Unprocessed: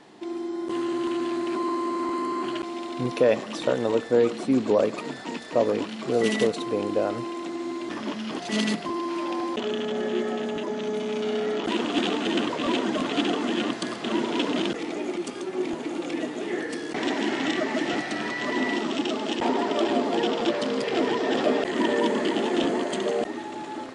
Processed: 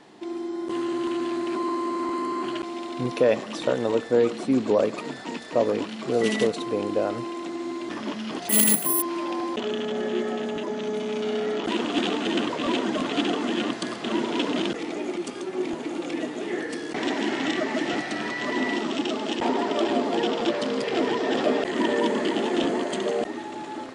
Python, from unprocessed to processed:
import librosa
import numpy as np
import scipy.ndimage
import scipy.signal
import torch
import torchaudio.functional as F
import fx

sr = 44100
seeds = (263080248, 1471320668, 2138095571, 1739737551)

y = fx.resample_bad(x, sr, factor=4, down='filtered', up='zero_stuff', at=(8.49, 9.02))